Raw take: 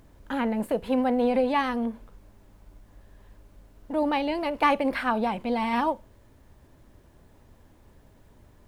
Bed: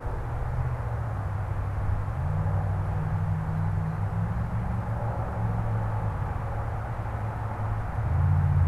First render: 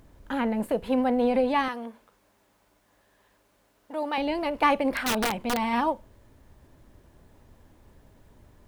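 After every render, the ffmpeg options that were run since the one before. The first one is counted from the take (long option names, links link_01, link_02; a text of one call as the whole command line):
ffmpeg -i in.wav -filter_complex "[0:a]asettb=1/sr,asplit=3[link_01][link_02][link_03];[link_01]atrim=end=1.684[link_04];[link_02]atrim=start=1.68:end=4.18,asetpts=PTS-STARTPTS,afade=type=in:duration=0.004:curve=qsin,afade=type=out:start_time=2.496:duration=0.004:curve=qsin,highpass=frequency=770:poles=1[link_05];[link_03]atrim=start=4.176[link_06];[link_04][link_05]acrossfade=duration=0.004:curve1=hsin:curve2=qsin[link_07];[link_07][link_06]acrossfade=duration=0.004:curve1=qsin:curve2=hsin,asettb=1/sr,asplit=3[link_08][link_09][link_10];[link_08]atrim=end=4.934[link_11];[link_09]atrim=start=4.93:end=5.57,asetpts=PTS-STARTPTS,afade=type=in:duration=0.004:curve=qsin,afade=type=out:start_time=0.636:duration=0.004:curve=qsin,aeval=exprs='(mod(9.44*val(0)+1,2)-1)/9.44':channel_layout=same[link_12];[link_10]atrim=start=5.566[link_13];[link_11][link_12]acrossfade=duration=0.004:curve1=hsin:curve2=qsin[link_14];[link_14][link_13]acrossfade=duration=0.004:curve1=qsin:curve2=hsin" out.wav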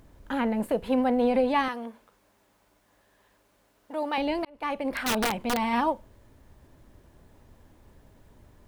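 ffmpeg -i in.wav -filter_complex "[0:a]asplit=2[link_01][link_02];[link_01]atrim=end=4.45,asetpts=PTS-STARTPTS,afade=type=out:start_time=4.446:duration=0.004:curve=hsin[link_03];[link_02]atrim=start=4.45,asetpts=PTS-STARTPTS,afade=type=in:duration=0.68[link_04];[link_03][link_04]concat=n=2:v=0:a=1" out.wav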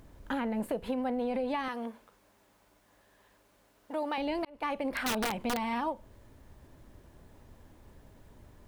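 ffmpeg -i in.wav -af "alimiter=limit=-19dB:level=0:latency=1:release=269,acompressor=threshold=-30dB:ratio=3" out.wav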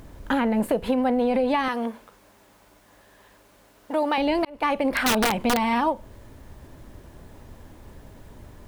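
ffmpeg -i in.wav -af "volume=10dB" out.wav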